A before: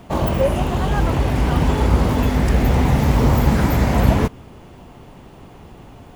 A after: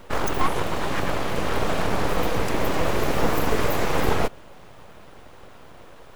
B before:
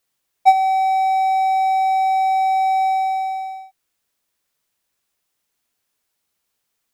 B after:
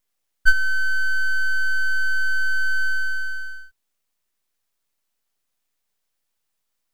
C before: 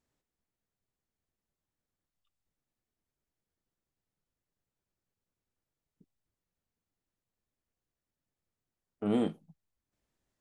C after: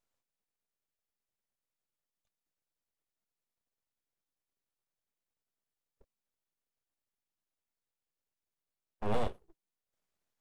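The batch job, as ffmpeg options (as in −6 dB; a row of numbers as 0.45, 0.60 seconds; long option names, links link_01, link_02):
-af "lowshelf=frequency=150:width_type=q:width=1.5:gain=-11,aeval=exprs='abs(val(0))':channel_layout=same,volume=-1dB"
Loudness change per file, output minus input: −7.0, −5.0, −4.5 LU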